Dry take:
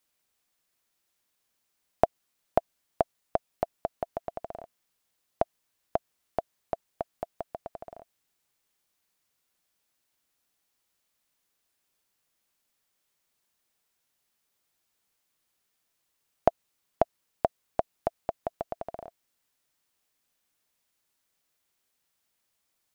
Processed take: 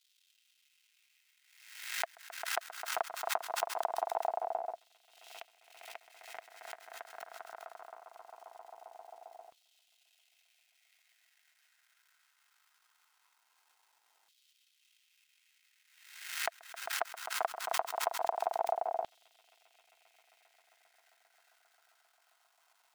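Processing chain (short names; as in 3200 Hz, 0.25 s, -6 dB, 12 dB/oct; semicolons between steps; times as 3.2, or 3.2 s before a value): high shelf 3500 Hz -11 dB; crackle 530/s -57 dBFS; notch comb 580 Hz; swelling echo 0.133 s, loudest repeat 5, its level -18 dB; LFO high-pass saw down 0.21 Hz 740–3400 Hz; backwards sustainer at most 63 dB/s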